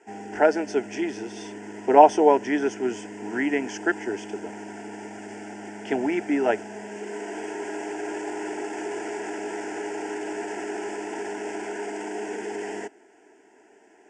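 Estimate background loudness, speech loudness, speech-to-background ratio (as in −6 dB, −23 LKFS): −35.0 LKFS, −23.0 LKFS, 12.0 dB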